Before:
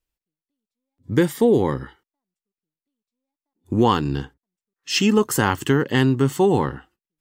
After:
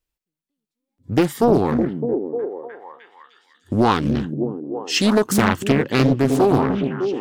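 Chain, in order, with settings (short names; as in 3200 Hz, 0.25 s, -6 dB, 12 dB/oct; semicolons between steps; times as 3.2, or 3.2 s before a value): on a send: delay with a stepping band-pass 0.304 s, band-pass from 200 Hz, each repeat 0.7 oct, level -2 dB; on the sum: Doppler distortion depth 0.69 ms; gain +1 dB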